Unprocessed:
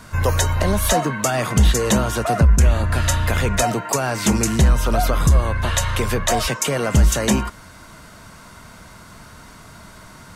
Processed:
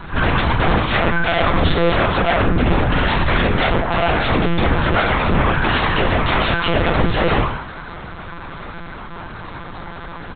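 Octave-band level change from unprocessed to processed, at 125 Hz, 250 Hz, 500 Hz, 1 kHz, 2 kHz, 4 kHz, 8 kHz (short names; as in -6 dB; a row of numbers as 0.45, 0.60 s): -1.0 dB, +2.0 dB, +3.5 dB, +5.0 dB, +7.5 dB, +3.5 dB, under -40 dB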